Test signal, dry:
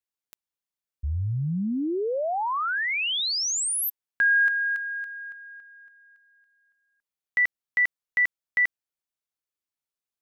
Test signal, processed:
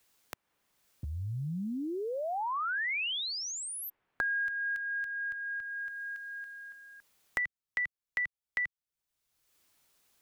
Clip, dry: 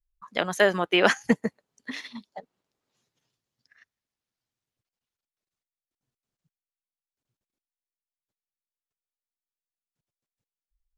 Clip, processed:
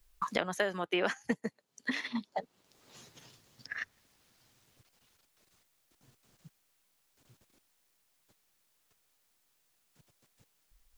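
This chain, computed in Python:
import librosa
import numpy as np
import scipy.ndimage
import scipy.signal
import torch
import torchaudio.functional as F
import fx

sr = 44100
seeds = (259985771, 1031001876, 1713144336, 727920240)

y = fx.band_squash(x, sr, depth_pct=100)
y = F.gain(torch.from_numpy(y), -8.5).numpy()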